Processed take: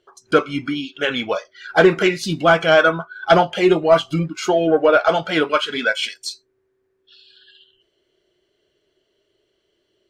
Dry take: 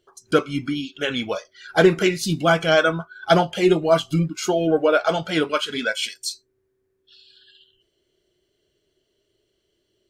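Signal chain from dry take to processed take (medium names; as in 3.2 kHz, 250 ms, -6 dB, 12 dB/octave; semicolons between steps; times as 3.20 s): overdrive pedal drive 10 dB, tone 1.9 kHz, clips at -2.5 dBFS; trim +2.5 dB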